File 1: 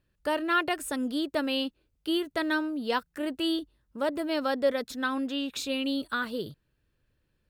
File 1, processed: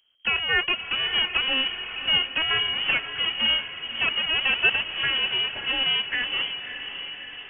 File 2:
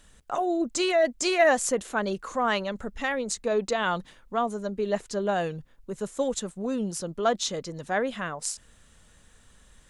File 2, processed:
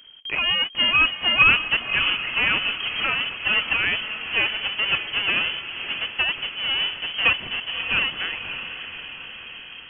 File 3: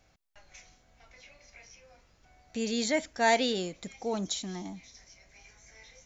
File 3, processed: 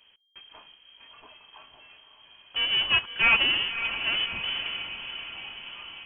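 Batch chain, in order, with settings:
half-waves squared off; inverted band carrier 3200 Hz; diffused feedback echo 0.588 s, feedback 61%, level -9.5 dB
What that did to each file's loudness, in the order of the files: +7.0, +7.0, +6.0 LU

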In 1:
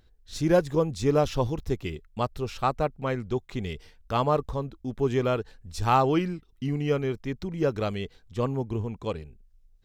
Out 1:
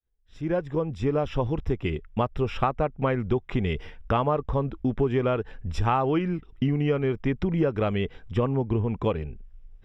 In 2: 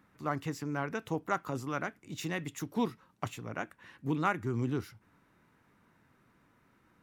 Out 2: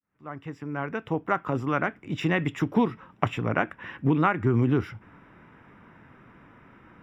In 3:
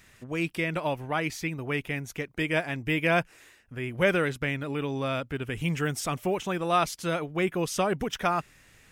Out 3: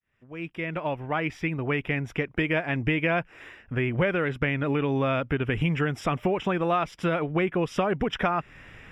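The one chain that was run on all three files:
opening faded in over 2.96 s; compressor 6:1, threshold -33 dBFS; polynomial smoothing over 25 samples; match loudness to -27 LUFS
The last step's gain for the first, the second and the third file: +12.0, +14.5, +11.0 dB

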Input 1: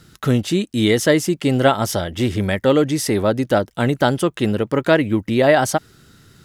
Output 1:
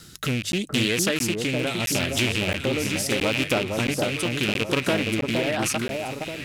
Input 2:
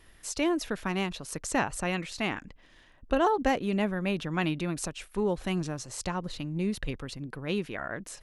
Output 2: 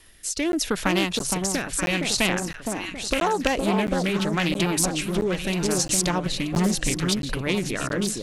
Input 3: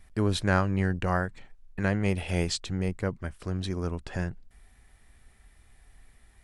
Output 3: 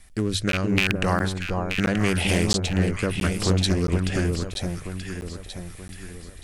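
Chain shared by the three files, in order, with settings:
rattling part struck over -25 dBFS, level -10 dBFS; high shelf 2900 Hz +12 dB; notches 50/100/150 Hz; AGC gain up to 5.5 dB; in parallel at -1.5 dB: limiter -8.5 dBFS; on the sum: compressor 6:1, threshold -17 dBFS; rotary speaker horn 0.8 Hz; on a send: echo with dull and thin repeats by turns 0.465 s, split 1100 Hz, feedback 64%, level -3 dB; on the sum: crackling interface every 0.67 s, samples 512, zero, from 0.52; Doppler distortion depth 0.29 ms; match loudness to -24 LUFS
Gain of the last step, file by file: -2.5, -1.0, +0.5 dB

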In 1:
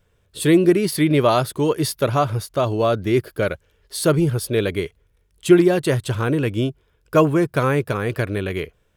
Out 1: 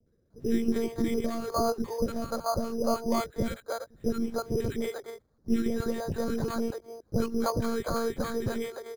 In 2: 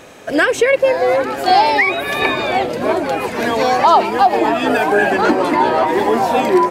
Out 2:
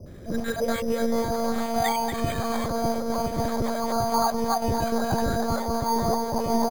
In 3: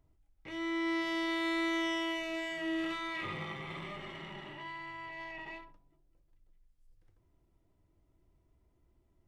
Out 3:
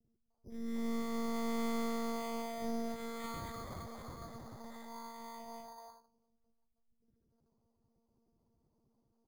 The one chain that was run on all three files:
Wiener smoothing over 9 samples; compressor 2.5:1, threshold -26 dBFS; three-band isolator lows -14 dB, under 360 Hz, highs -16 dB, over 2000 Hz; low-pass opened by the level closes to 1300 Hz, open at -27.5 dBFS; monotone LPC vocoder at 8 kHz 230 Hz; three bands offset in time lows, highs, mids 60/300 ms, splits 500/1600 Hz; careless resampling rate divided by 8×, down filtered, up hold; bell 130 Hz +9.5 dB 2.9 oct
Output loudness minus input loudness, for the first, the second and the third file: -11.0, -11.5, -5.0 LU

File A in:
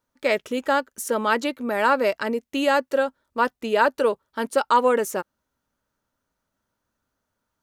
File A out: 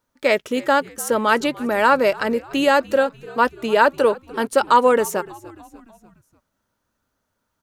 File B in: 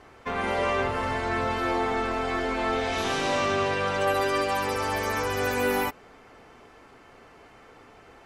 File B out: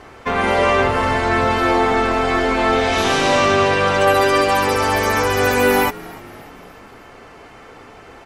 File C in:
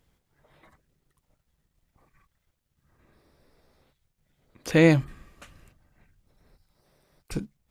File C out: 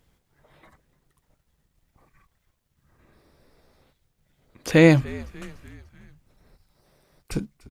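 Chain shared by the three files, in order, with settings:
frequency-shifting echo 0.295 s, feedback 54%, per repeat -72 Hz, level -21 dB; normalise peaks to -2 dBFS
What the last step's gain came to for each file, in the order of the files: +4.0, +10.5, +3.5 dB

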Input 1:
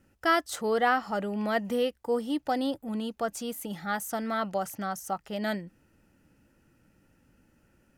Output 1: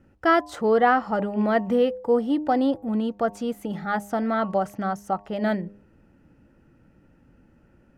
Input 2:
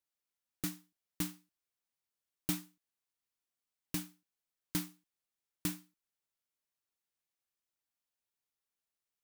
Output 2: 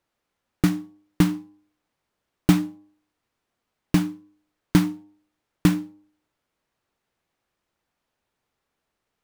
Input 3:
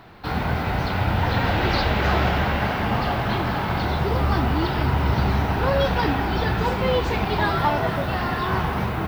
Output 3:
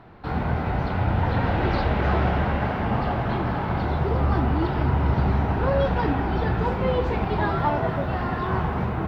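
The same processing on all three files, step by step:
LPF 1100 Hz 6 dB/oct; de-hum 101.4 Hz, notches 11; match loudness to -24 LUFS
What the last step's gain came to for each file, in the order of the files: +8.0, +21.5, 0.0 dB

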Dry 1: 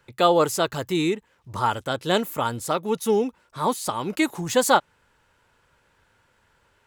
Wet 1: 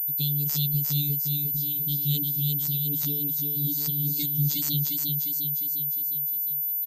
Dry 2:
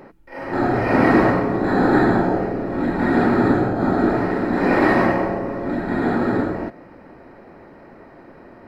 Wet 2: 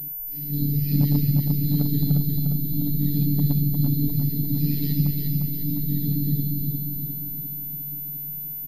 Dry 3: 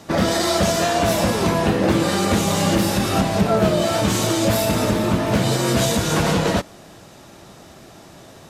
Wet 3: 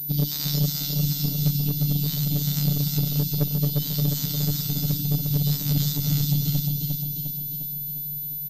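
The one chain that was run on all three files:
reverb removal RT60 1.1 s; Chebyshev band-stop 200–4300 Hz, order 3; low shelf 310 Hz +4 dB; comb 5 ms, depth 32%; dynamic EQ 3200 Hz, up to +4 dB, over -55 dBFS, Q 5.2; in parallel at -2.5 dB: compressor, threshold -27 dBFS; on the sum: requantised 10-bit, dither none; one-sided clip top -12.5 dBFS; robotiser 145 Hz; on a send: feedback echo 0.353 s, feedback 57%, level -3.5 dB; on the sum: pulse-width modulation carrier 14000 Hz; match loudness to -24 LUFS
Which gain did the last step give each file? -0.5, +2.5, -1.5 dB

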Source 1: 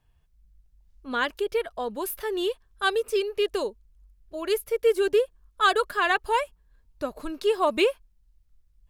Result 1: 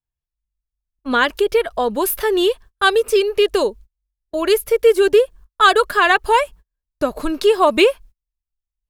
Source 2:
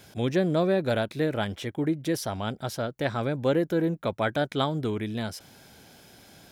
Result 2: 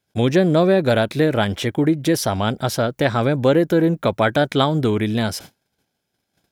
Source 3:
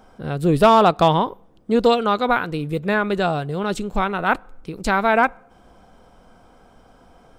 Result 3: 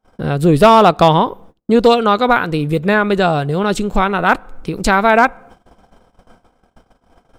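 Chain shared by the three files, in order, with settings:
gate -47 dBFS, range -36 dB; in parallel at +1 dB: compressor 6:1, threshold -28 dBFS; on the sum: hard clip -5.5 dBFS; normalise peaks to -1.5 dBFS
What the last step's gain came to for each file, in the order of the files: +6.0, +5.0, +4.0 dB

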